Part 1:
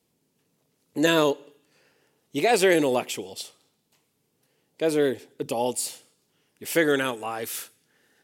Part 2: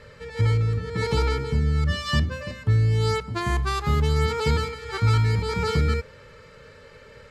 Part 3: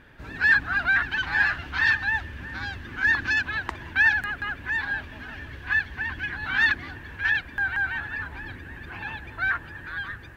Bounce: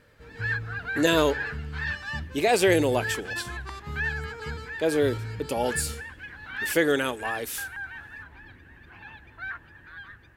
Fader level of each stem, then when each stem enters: -1.0, -14.0, -10.5 dB; 0.00, 0.00, 0.00 s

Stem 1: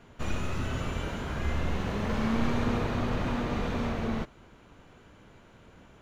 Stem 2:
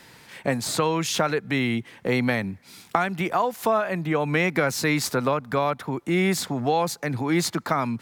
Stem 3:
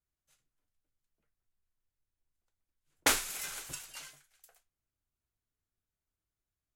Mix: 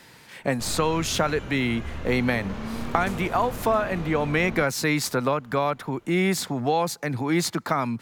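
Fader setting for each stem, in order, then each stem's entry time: -4.5, -0.5, -18.0 dB; 0.40, 0.00, 0.00 s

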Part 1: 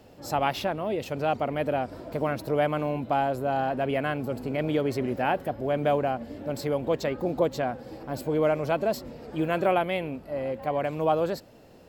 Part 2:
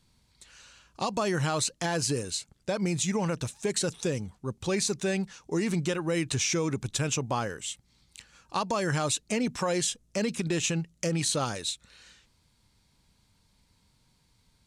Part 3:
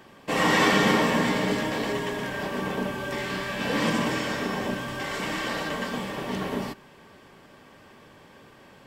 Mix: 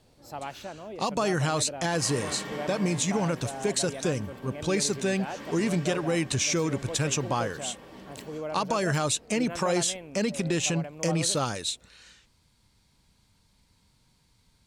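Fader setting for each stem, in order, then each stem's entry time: -11.5, +1.5, -17.0 dB; 0.00, 0.00, 1.65 s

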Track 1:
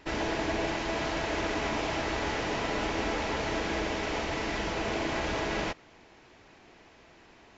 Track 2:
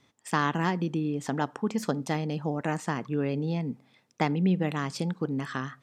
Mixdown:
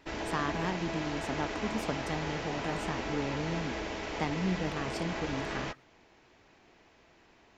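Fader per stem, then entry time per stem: -5.5, -7.0 dB; 0.00, 0.00 s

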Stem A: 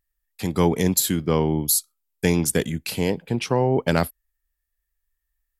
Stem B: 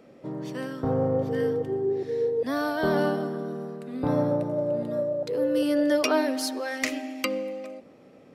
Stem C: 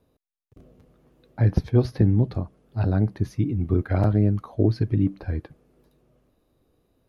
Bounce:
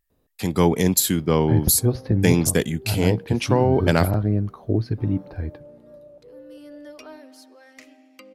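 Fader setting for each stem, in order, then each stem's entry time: +1.5, -18.5, -1.5 dB; 0.00, 0.95, 0.10 s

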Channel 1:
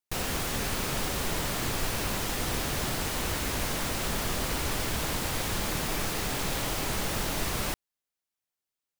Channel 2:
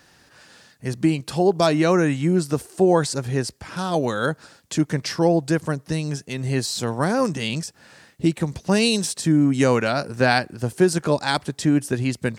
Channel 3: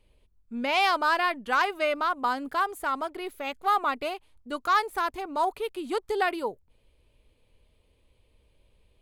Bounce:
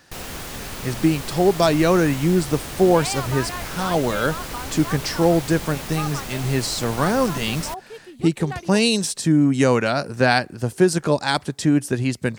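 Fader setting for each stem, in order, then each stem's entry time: -2.0, +1.0, -7.5 dB; 0.00, 0.00, 2.30 s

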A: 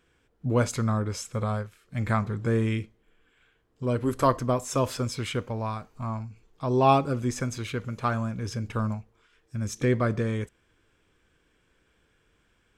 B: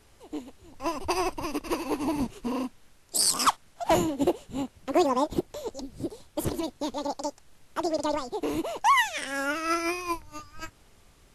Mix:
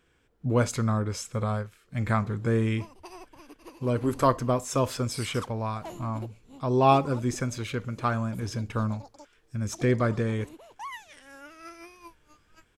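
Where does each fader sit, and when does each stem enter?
0.0, -18.0 dB; 0.00, 1.95 s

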